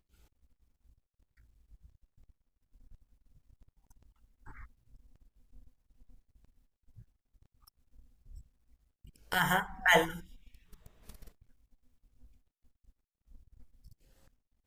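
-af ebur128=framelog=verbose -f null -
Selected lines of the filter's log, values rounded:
Integrated loudness:
  I:         -28.6 LUFS
  Threshold: -48.3 LUFS
Loudness range:
  LRA:         7.6 LU
  Threshold: -58.9 LUFS
  LRA low:   -40.6 LUFS
  LRA high:  -33.0 LUFS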